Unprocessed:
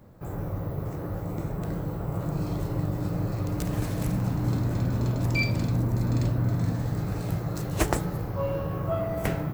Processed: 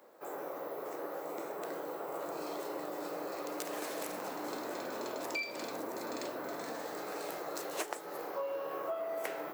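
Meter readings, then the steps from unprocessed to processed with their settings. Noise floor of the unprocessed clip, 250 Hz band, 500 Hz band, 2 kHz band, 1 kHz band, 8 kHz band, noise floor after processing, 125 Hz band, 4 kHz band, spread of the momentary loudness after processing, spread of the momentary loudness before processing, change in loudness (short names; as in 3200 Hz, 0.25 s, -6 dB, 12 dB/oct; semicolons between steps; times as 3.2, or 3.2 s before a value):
-34 dBFS, -14.5 dB, -4.0 dB, -6.0 dB, -3.0 dB, -4.0 dB, -44 dBFS, -37.0 dB, -4.0 dB, 4 LU, 7 LU, -11.0 dB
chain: HPF 390 Hz 24 dB/oct; compressor 10:1, threshold -34 dBFS, peak gain reduction 14 dB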